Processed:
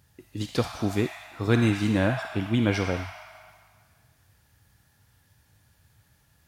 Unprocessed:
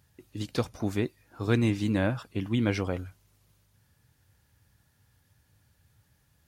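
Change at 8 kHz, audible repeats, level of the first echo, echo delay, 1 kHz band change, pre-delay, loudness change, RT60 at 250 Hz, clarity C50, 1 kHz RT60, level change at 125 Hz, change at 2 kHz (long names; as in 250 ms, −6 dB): +5.0 dB, no echo audible, no echo audible, no echo audible, +5.5 dB, 32 ms, +3.5 dB, 1.8 s, 2.5 dB, 2.0 s, +3.0 dB, +5.5 dB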